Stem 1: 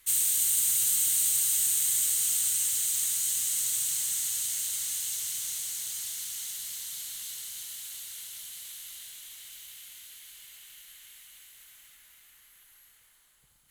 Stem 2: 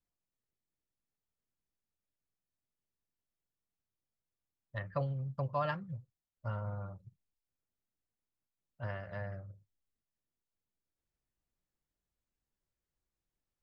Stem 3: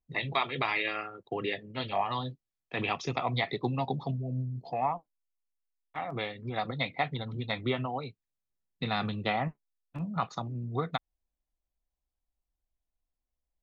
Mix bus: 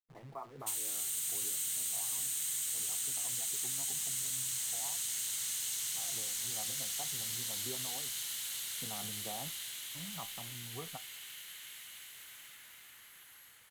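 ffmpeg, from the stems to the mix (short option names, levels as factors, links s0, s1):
-filter_complex "[0:a]highpass=97,dynaudnorm=f=130:g=11:m=2.24,adelay=600,volume=0.944[s0];[2:a]lowpass=f=1200:w=0.5412,lowpass=f=1200:w=1.3066,acrusher=bits=8:dc=4:mix=0:aa=0.000001,flanger=delay=8.5:depth=2.9:regen=75:speed=0.17:shape=triangular,volume=0.335[s1];[s0][s1]amix=inputs=2:normalize=0,highshelf=f=4500:g=-7,acompressor=threshold=0.02:ratio=6"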